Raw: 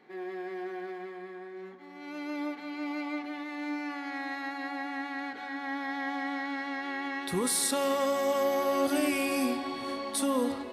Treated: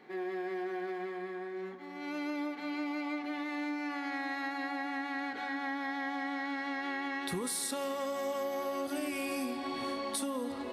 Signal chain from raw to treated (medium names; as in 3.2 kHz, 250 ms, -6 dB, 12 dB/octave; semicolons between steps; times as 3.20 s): compression 6:1, threshold -36 dBFS, peak gain reduction 13 dB; trim +3 dB